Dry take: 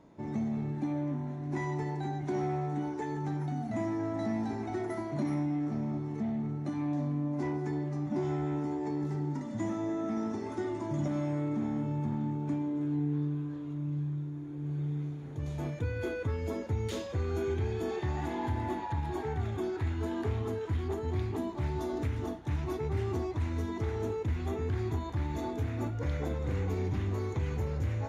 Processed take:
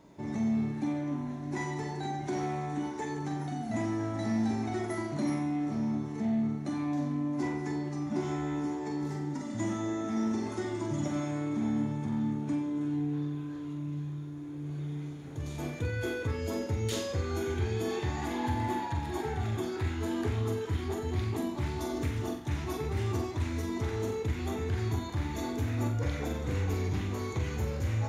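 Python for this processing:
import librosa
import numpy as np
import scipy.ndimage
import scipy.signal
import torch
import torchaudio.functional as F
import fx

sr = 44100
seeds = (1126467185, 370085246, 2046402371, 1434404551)

y = fx.high_shelf(x, sr, hz=2900.0, db=9.0)
y = fx.room_flutter(y, sr, wall_m=7.7, rt60_s=0.43)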